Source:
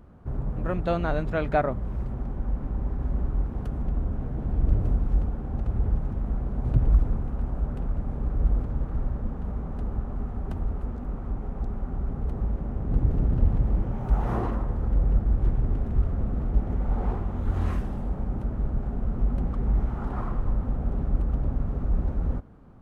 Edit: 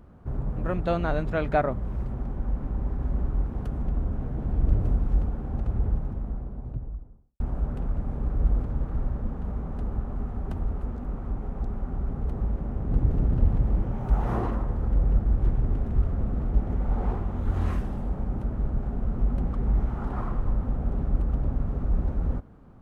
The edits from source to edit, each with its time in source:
5.54–7.4 studio fade out

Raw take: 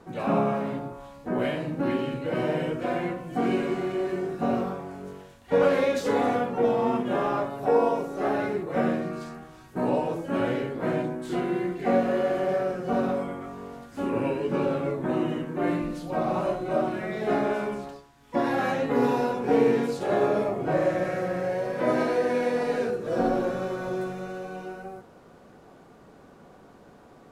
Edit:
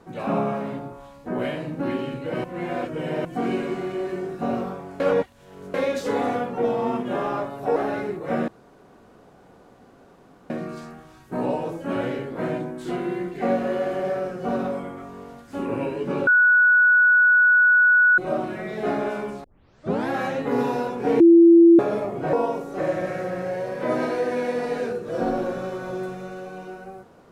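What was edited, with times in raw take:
2.44–3.25 reverse
5–5.74 reverse
7.76–8.22 move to 20.77
8.94 insert room tone 2.02 s
14.71–16.62 bleep 1470 Hz -12.5 dBFS
17.88 tape start 0.65 s
19.64–20.23 bleep 337 Hz -8 dBFS

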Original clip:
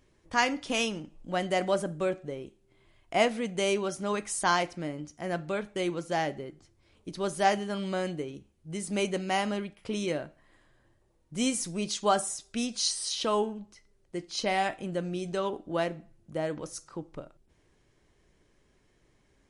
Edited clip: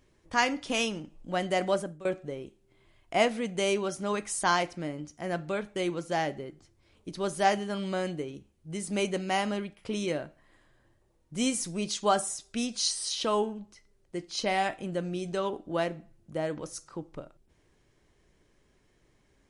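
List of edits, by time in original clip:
1.74–2.05 fade out, to -19 dB

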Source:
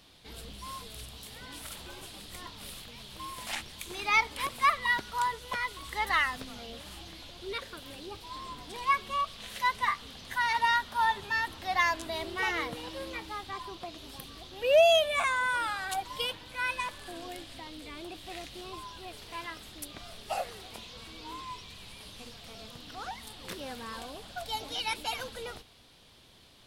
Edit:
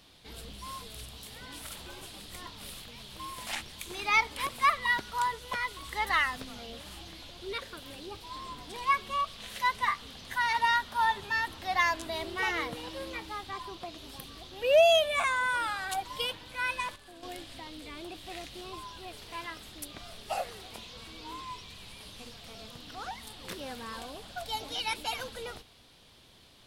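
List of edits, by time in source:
16.96–17.23 gain -8.5 dB

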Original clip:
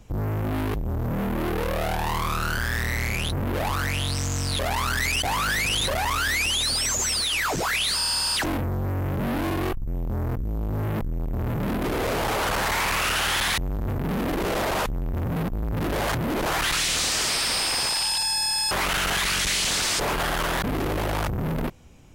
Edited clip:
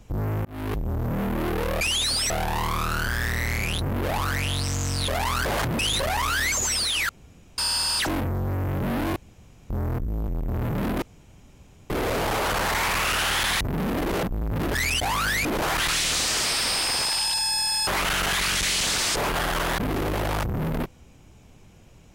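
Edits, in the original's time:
0.45–0.75 fade in
4.96–5.67 swap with 15.95–16.29
6.4–6.89 move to 1.81
7.46–7.95 room tone
9.53–10.07 room tone
10.65–11.13 cut
11.87 insert room tone 0.88 s
13.61–13.95 cut
14.54–15.44 cut

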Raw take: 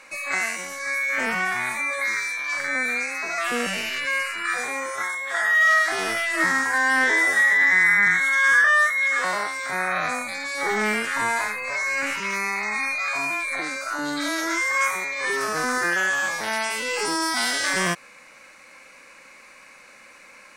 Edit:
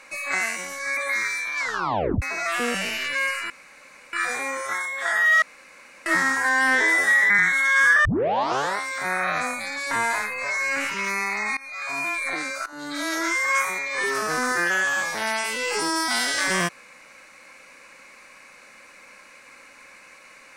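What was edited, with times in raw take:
0.97–1.89 cut
2.51 tape stop 0.63 s
4.42 insert room tone 0.63 s
5.71–6.35 room tone
7.59–7.98 cut
8.73 tape start 0.72 s
10.59–11.17 cut
12.83–13.36 fade in, from -22 dB
13.92–14.4 fade in linear, from -18.5 dB

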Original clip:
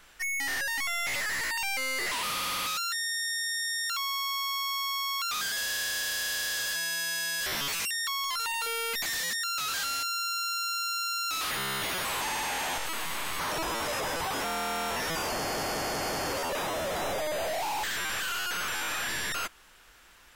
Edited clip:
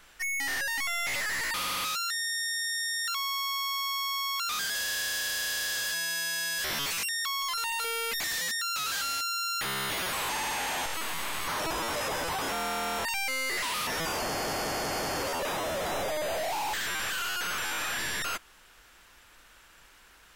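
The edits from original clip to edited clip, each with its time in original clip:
1.54–2.36 move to 14.97
10.43–11.53 cut

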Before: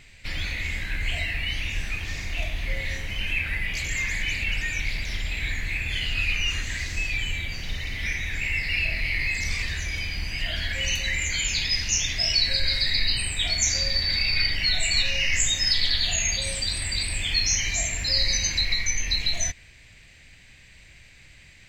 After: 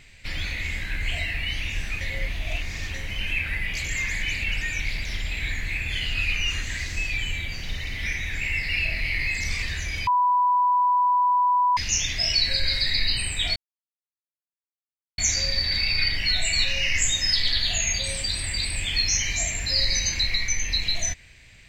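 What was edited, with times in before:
2.01–2.94 reverse
10.07–11.77 bleep 988 Hz -17 dBFS
13.56 insert silence 1.62 s

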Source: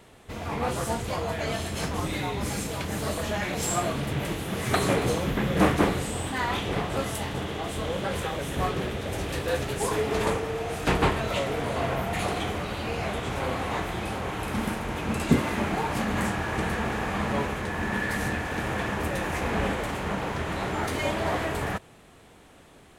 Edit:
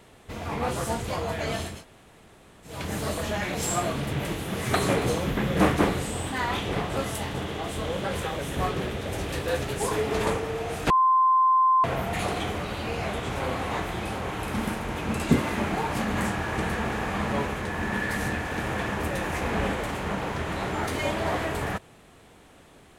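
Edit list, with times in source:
1.73–2.74 room tone, crossfade 0.24 s
10.9–11.84 bleep 1040 Hz -16.5 dBFS

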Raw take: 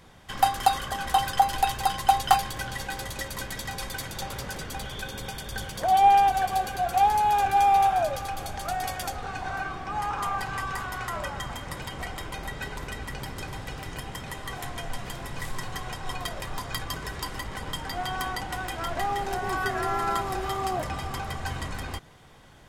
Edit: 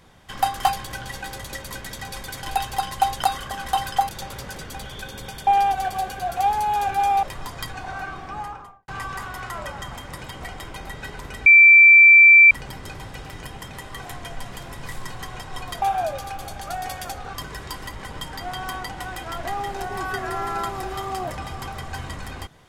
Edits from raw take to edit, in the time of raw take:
0.65–1.5 swap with 2.31–4.09
5.47–6.04 cut
7.8–9.32 swap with 16.35–16.86
9.83–10.46 studio fade out
13.04 add tone 2340 Hz -6.5 dBFS 1.05 s

